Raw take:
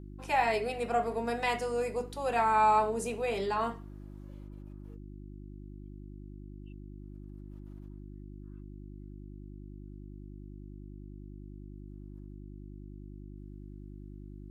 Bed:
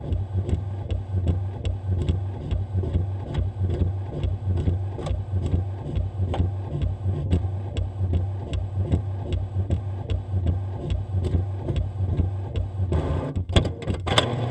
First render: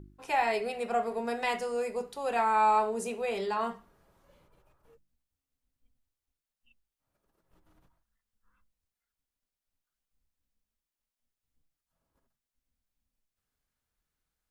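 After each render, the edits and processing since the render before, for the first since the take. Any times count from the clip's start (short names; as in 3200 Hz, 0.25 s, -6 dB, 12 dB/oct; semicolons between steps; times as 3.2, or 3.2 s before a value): de-hum 50 Hz, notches 7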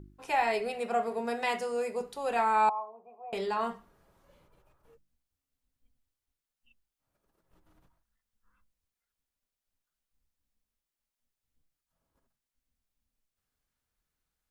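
0.76–2.01 HPF 79 Hz; 2.69–3.33 vocal tract filter a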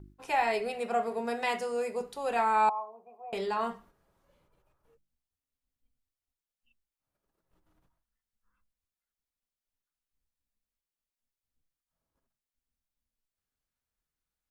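gate -56 dBFS, range -6 dB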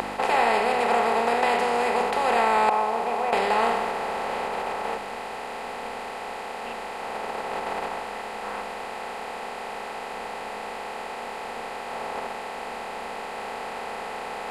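per-bin compression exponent 0.2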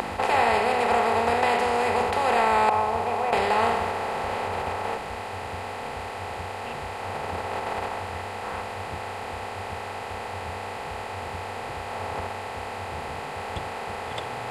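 add bed -17.5 dB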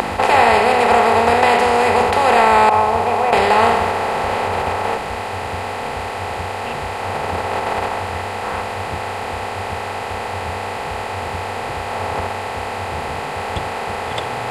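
gain +9 dB; limiter -1 dBFS, peak gain reduction 2.5 dB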